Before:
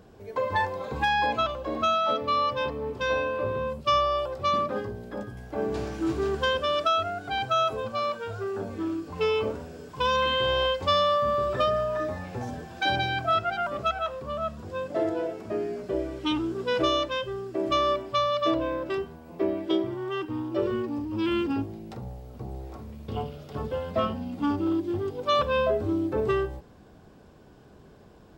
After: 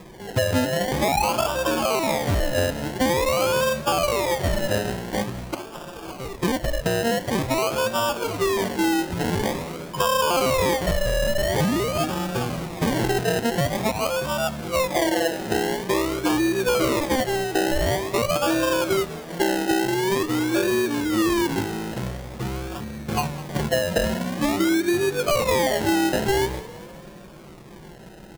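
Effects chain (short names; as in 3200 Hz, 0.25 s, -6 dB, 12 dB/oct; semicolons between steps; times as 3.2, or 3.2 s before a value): 5.54–6.86 HPF 1400 Hz 12 dB/oct; comb 5.7 ms, depth 80%; in parallel at +2.5 dB: limiter -18 dBFS, peak gain reduction 7.5 dB; on the sum: compressor, threshold -18 dBFS, peak gain reduction 6.5 dB; decimation with a swept rate 30×, swing 60% 0.47 Hz; on a send: frequency-shifting echo 0.202 s, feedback 59%, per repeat +46 Hz, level -18 dB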